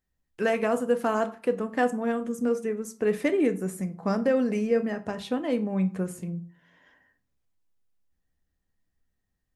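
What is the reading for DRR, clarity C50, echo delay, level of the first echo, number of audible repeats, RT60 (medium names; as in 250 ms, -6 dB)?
8.0 dB, 15.5 dB, no echo, no echo, no echo, 0.40 s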